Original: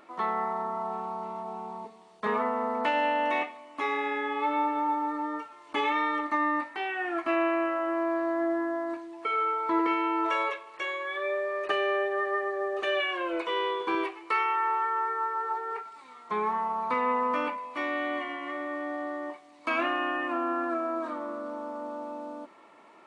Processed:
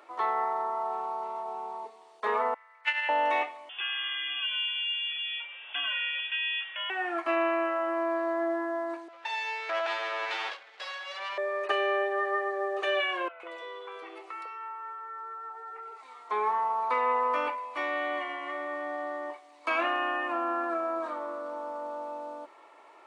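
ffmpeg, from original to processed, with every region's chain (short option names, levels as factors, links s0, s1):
-filter_complex "[0:a]asettb=1/sr,asplit=3[s0][s1][s2];[s0]atrim=end=2.544[s3];[s1]atrim=start=2.54:end=3.09,asetpts=PTS-STARTPTS,afade=t=in:d=0.004:c=qsin,afade=t=out:st=0.546:d=0.004:c=qsin,agate=range=0.0562:threshold=0.0562:ratio=16:release=100:detection=peak,highpass=f=2000:t=q:w=2.9,acontrast=70[s4];[s2]atrim=start=3.086[s5];[s3][s4]acrossfade=d=0.004:c1=hsin:c2=qsin[s6];[s6][s5]acrossfade=d=0.004:c1=qsin:c2=hsin,asettb=1/sr,asplit=3[s7][s8][s9];[s7]atrim=end=3.694[s10];[s8]atrim=start=3.69:end=6.9,asetpts=PTS-STARTPTS,afade=t=in:d=0.004:c=qsin,afade=t=out:st=3.206:d=0.004:c=qsin,aeval=exprs='val(0)+0.5*0.00631*sgn(val(0))':c=same,acompressor=threshold=0.0158:ratio=1.5:attack=3.2:release=140:knee=1:detection=peak,lowpass=f=3100:t=q:w=0.5098,lowpass=f=3100:t=q:w=0.6013,lowpass=f=3100:t=q:w=0.9,lowpass=f=3100:t=q:w=2.563,afreqshift=-3700[s11];[s9]atrim=start=6.896[s12];[s10][s11]acrossfade=d=0.004:c1=hsin:c2=qsin[s13];[s13][s12]acrossfade=d=0.004:c1=qsin:c2=hsin,asettb=1/sr,asplit=3[s14][s15][s16];[s14]atrim=end=9.084[s17];[s15]atrim=start=9.08:end=11.38,asetpts=PTS-STARTPTS,afade=t=in:d=0.004:c=qsin,afade=t=out:st=2.296:d=0.004:c=qsin,aeval=exprs='abs(val(0))':c=same,highpass=530,lowpass=4200[s18];[s16]atrim=start=11.376[s19];[s17][s18]acrossfade=d=0.004:c1=hsin:c2=qsin[s20];[s20][s19]acrossfade=d=0.004:c1=qsin:c2=hsin,asettb=1/sr,asplit=3[s21][s22][s23];[s21]atrim=end=13.284[s24];[s22]atrim=start=13.28:end=16.03,asetpts=PTS-STARTPTS,afade=t=in:d=0.004:c=qsin,afade=t=out:st=2.746:d=0.004:c=qsin,aecho=1:1:1.5:0.47,atrim=end_sample=121275,acompressor=threshold=0.0126:ratio=5:attack=3.2:release=140:knee=1:detection=peak,acrossover=split=730|3100[s25][s26][s27];[s27]adelay=120[s28];[s25]adelay=150[s29];[s29][s26][s28]amix=inputs=3:normalize=0,atrim=end_sample=121275[s30];[s23]atrim=start=16.026[s31];[s24][s30]acrossfade=d=0.004:c1=hsin:c2=qsin[s32];[s32][s31]acrossfade=d=0.004:c1=qsin:c2=hsin,highpass=f=360:w=0.5412,highpass=f=360:w=1.3066,equalizer=f=820:w=4.4:g=3"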